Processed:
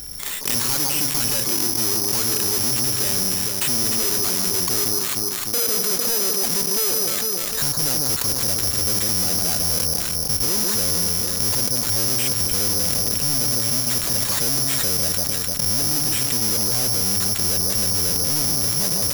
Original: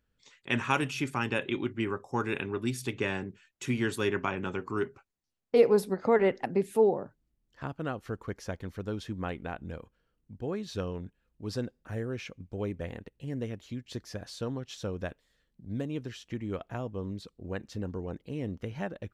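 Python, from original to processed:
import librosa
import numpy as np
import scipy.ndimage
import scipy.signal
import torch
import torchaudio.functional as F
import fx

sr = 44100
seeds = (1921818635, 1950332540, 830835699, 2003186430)

y = fx.halfwave_hold(x, sr)
y = fx.recorder_agc(y, sr, target_db=-14.0, rise_db_per_s=25.0, max_gain_db=30)
y = fx.echo_alternate(y, sr, ms=151, hz=1200.0, feedback_pct=62, wet_db=-5.5)
y = np.clip(10.0 ** (22.5 / 20.0) * y, -1.0, 1.0) / 10.0 ** (22.5 / 20.0)
y = (np.kron(y[::8], np.eye(8)[0]) * 8)[:len(y)]
y = fx.env_flatten(y, sr, amount_pct=70)
y = F.gain(torch.from_numpy(y), -6.5).numpy()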